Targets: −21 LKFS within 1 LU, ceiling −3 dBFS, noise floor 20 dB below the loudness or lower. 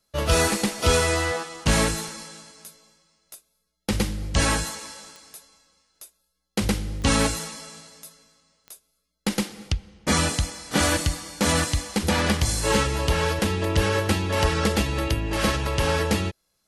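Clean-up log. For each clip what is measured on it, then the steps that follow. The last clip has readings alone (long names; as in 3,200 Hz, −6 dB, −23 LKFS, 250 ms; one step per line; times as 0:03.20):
number of clicks 4; integrated loudness −24.0 LKFS; sample peak −7.5 dBFS; target loudness −21.0 LKFS
→ click removal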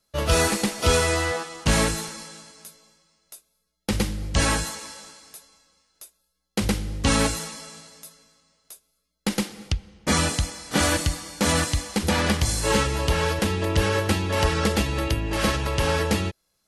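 number of clicks 0; integrated loudness −24.0 LKFS; sample peak −7.5 dBFS; target loudness −21.0 LKFS
→ level +3 dB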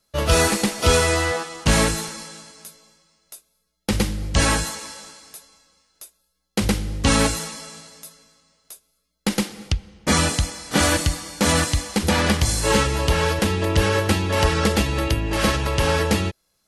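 integrated loudness −21.0 LKFS; sample peak −4.5 dBFS; background noise floor −71 dBFS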